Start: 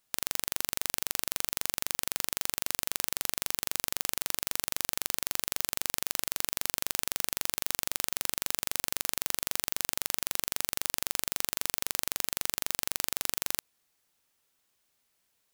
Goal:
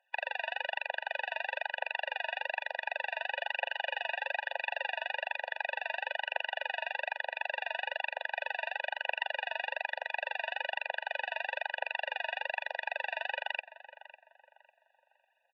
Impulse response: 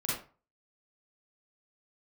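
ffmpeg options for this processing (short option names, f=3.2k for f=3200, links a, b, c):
-filter_complex "[0:a]asettb=1/sr,asplit=3[a][b][c];[a]atrim=end=3.364[d];[b]atrim=start=3.36:end=4.87,asetpts=PTS-STARTPTS,afade=t=in:d=0.004:c=qsin,afade=t=out:st=1.506:d=0.004:c=qsin,aecho=1:1:6.7:0.42,atrim=end_sample=66591[e];[c]atrim=start=4.866[f];[d][e]acrossfade=d=0.004:c1=hsin:c2=qsin[g];[g][f]acrossfade=d=0.004:c1=qsin:c2=hsin,aphaser=in_gain=1:out_gain=1:delay=3.8:decay=0.64:speed=1.1:type=triangular,asplit=2[h][i];[i]adelay=550,lowpass=f=1.8k:p=1,volume=-14dB,asplit=2[j][k];[k]adelay=550,lowpass=f=1.8k:p=1,volume=0.37,asplit=2[l][m];[m]adelay=550,lowpass=f=1.8k:p=1,volume=0.37,asplit=2[n][o];[o]adelay=550,lowpass=f=1.8k:p=1,volume=0.37[p];[h][j][l][n][p]amix=inputs=5:normalize=0,highpass=f=430:t=q:w=0.5412,highpass=f=430:t=q:w=1.307,lowpass=f=2.7k:t=q:w=0.5176,lowpass=f=2.7k:t=q:w=0.7071,lowpass=f=2.7k:t=q:w=1.932,afreqshift=99,afftfilt=real='re*eq(mod(floor(b*sr/1024/490),2),1)':imag='im*eq(mod(floor(b*sr/1024/490),2),1)':win_size=1024:overlap=0.75,volume=7.5dB"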